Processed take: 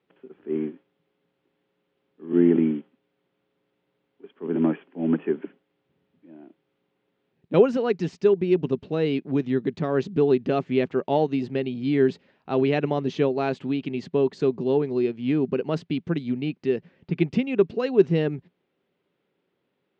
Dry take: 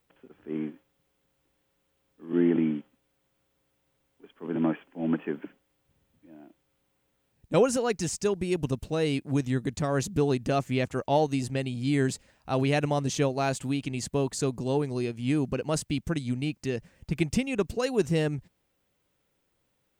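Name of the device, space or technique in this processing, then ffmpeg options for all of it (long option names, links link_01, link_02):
kitchen radio: -af "highpass=160,equalizer=frequency=170:width_type=q:width=4:gain=7,equalizer=frequency=250:width_type=q:width=4:gain=4,equalizer=frequency=390:width_type=q:width=4:gain=10,lowpass=frequency=3800:width=0.5412,lowpass=frequency=3800:width=1.3066"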